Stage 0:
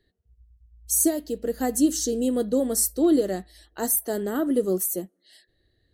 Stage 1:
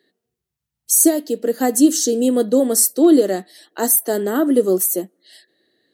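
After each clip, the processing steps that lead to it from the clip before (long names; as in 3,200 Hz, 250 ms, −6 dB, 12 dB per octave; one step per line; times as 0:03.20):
high-pass filter 210 Hz 24 dB per octave
level +8 dB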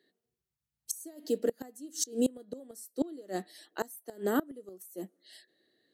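gate with flip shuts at −9 dBFS, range −25 dB
level −8 dB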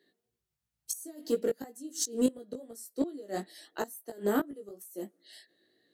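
chorus effect 2.9 Hz, delay 17 ms, depth 2.6 ms
in parallel at −9 dB: hard clipping −33.5 dBFS, distortion −6 dB
on the sum: level +2 dB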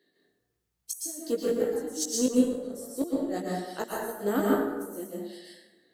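dense smooth reverb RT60 1.1 s, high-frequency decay 0.55×, pre-delay 105 ms, DRR −3.5 dB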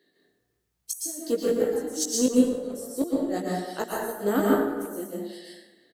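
far-end echo of a speakerphone 320 ms, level −18 dB
level +3 dB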